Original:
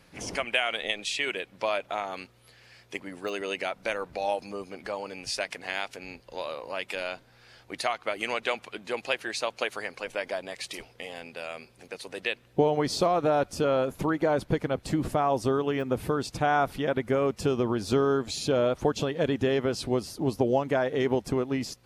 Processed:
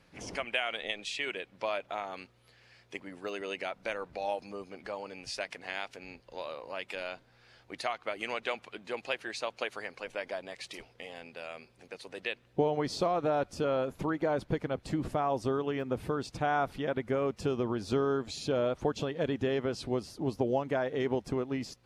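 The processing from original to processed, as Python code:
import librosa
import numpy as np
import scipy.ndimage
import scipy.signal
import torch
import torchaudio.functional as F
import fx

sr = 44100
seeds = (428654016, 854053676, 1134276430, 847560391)

y = fx.high_shelf(x, sr, hz=9900.0, db=-12.0)
y = y * librosa.db_to_amplitude(-5.0)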